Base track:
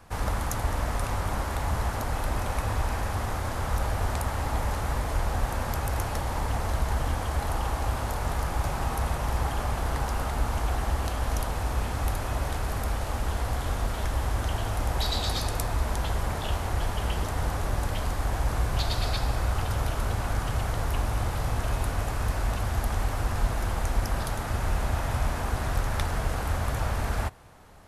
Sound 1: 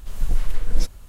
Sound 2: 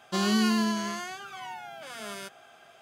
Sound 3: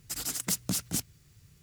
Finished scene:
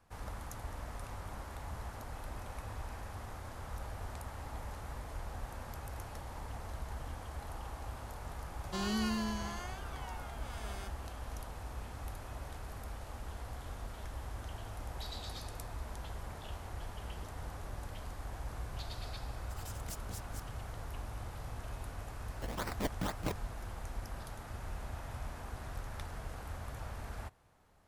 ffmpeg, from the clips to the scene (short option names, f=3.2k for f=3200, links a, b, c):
-filter_complex "[3:a]asplit=2[a][b];[0:a]volume=-15.5dB[c];[a]tremolo=f=3.8:d=0.53[d];[b]acrusher=samples=25:mix=1:aa=0.000001:lfo=1:lforange=25:lforate=2.1[e];[2:a]atrim=end=2.81,asetpts=PTS-STARTPTS,volume=-10dB,afade=t=in:d=0.004:c=hsin,afade=t=out:st=2.806:d=0.004:c=hsin,adelay=8600[f];[d]atrim=end=1.62,asetpts=PTS-STARTPTS,volume=-17dB,afade=t=in:d=0.004:c=hsin,afade=t=out:st=1.616:d=0.004:c=hsin,adelay=855540S[g];[e]atrim=end=1.62,asetpts=PTS-STARTPTS,volume=-6dB,afade=t=in:d=0.004:c=hsin,afade=t=out:st=1.616:d=0.004:c=hsin,adelay=22320[h];[c][f][g][h]amix=inputs=4:normalize=0"